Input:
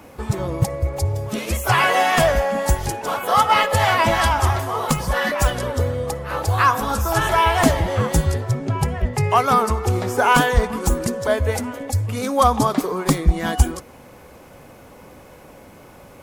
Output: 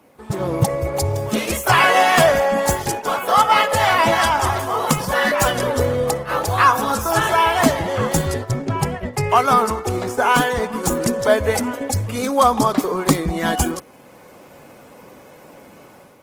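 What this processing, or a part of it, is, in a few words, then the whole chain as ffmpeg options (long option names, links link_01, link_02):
video call: -af "highpass=140,dynaudnorm=framelen=160:gausssize=5:maxgain=9dB,agate=range=-7dB:threshold=-24dB:ratio=16:detection=peak,volume=-1dB" -ar 48000 -c:a libopus -b:a 20k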